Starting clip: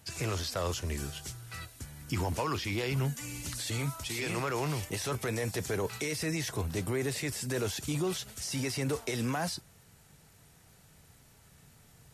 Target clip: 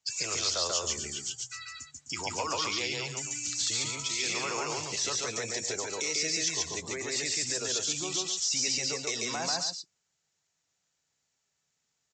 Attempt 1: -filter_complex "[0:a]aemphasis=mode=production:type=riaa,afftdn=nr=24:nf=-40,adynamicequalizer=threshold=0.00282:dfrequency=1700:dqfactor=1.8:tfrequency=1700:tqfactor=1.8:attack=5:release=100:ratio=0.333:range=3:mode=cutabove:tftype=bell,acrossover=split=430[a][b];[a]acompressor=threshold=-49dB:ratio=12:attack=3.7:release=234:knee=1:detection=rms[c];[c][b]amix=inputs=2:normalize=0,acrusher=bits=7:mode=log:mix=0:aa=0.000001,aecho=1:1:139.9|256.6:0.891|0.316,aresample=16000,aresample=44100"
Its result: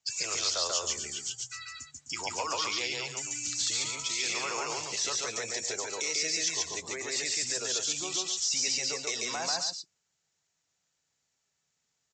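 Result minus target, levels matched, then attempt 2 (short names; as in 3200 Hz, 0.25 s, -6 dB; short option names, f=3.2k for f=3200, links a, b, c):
compressor: peak gain reduction +7.5 dB
-filter_complex "[0:a]aemphasis=mode=production:type=riaa,afftdn=nr=24:nf=-40,adynamicequalizer=threshold=0.00282:dfrequency=1700:dqfactor=1.8:tfrequency=1700:tqfactor=1.8:attack=5:release=100:ratio=0.333:range=3:mode=cutabove:tftype=bell,acrossover=split=430[a][b];[a]acompressor=threshold=-41dB:ratio=12:attack=3.7:release=234:knee=1:detection=rms[c];[c][b]amix=inputs=2:normalize=0,acrusher=bits=7:mode=log:mix=0:aa=0.000001,aecho=1:1:139.9|256.6:0.891|0.316,aresample=16000,aresample=44100"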